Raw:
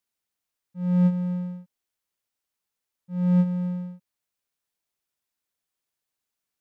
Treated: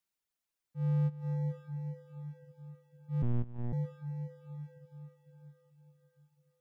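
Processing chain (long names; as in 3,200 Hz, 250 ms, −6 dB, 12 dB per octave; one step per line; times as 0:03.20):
frequency shifter −31 Hz
feedback delay with all-pass diffusion 499 ms, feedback 53%, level −9 dB
reverb reduction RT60 0.64 s
downward compressor 4 to 1, threshold −25 dBFS, peak gain reduction 7 dB
0:03.22–0:03.73: one-pitch LPC vocoder at 8 kHz 120 Hz
level −3 dB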